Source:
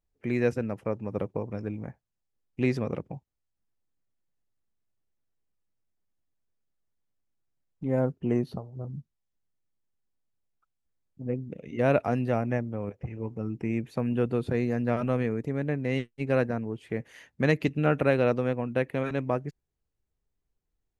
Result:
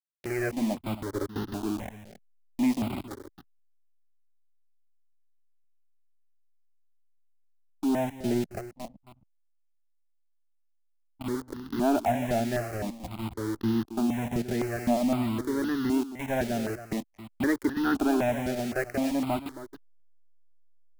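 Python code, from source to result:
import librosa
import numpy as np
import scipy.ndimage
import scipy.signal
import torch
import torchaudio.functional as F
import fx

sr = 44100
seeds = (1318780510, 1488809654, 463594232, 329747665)

p1 = fx.high_shelf(x, sr, hz=2800.0, db=-8.0)
p2 = fx.fixed_phaser(p1, sr, hz=740.0, stages=8)
p3 = fx.quant_companded(p2, sr, bits=2)
p4 = p2 + (p3 * 10.0 ** (-6.0 / 20.0))
p5 = fx.backlash(p4, sr, play_db=-42.5)
p6 = p5 + fx.echo_single(p5, sr, ms=271, db=-12.0, dry=0)
p7 = fx.phaser_held(p6, sr, hz=3.9, low_hz=290.0, high_hz=2300.0)
y = p7 * 10.0 ** (2.5 / 20.0)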